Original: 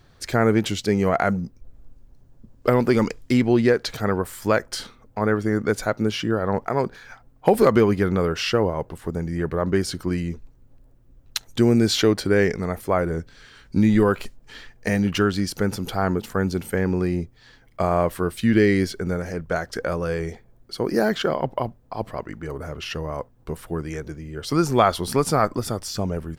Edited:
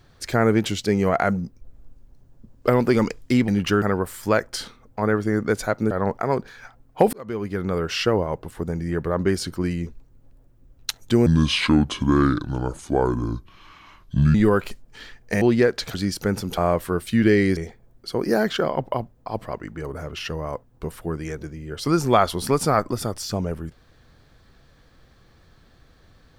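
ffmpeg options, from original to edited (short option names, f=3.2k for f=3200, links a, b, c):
-filter_complex "[0:a]asplit=11[a][b][c][d][e][f][g][h][i][j][k];[a]atrim=end=3.482[l];[b]atrim=start=14.958:end=15.302[m];[c]atrim=start=4.008:end=6.102[n];[d]atrim=start=6.378:end=7.6,asetpts=PTS-STARTPTS,afade=t=out:st=1.218:d=0.004:c=hsin[o];[e]atrim=start=7.6:end=11.734,asetpts=PTS-STARTPTS,afade=t=in:d=0.85[p];[f]atrim=start=11.73:end=13.89,asetpts=PTS-STARTPTS,asetrate=30870,aresample=44100[q];[g]atrim=start=13.886:end=14.962[r];[h]atrim=start=3.478:end=4.012[s];[i]atrim=start=15.298:end=15.932[t];[j]atrim=start=17.878:end=18.872[u];[k]atrim=start=20.218[v];[l][m]acrossfade=d=0.004:c1=hsin:c2=hsin[w];[w][n]acrossfade=d=0.004:c1=hsin:c2=hsin[x];[o][p]concat=n=2:v=0:a=1[y];[x][y]acrossfade=d=0.004:c1=hsin:c2=hsin[z];[z][q]acrossfade=d=0.004:c1=hsin:c2=hsin[aa];[aa][r]acrossfade=d=0.004:c1=hsin:c2=hsin[ab];[ab][s]acrossfade=d=0.004:c1=hsin:c2=hsin[ac];[ac][t]acrossfade=d=0.004:c1=hsin:c2=hsin[ad];[ad][u]acrossfade=d=0.004:c1=hsin:c2=hsin[ae];[ae][v]acrossfade=d=0.004:c1=hsin:c2=hsin"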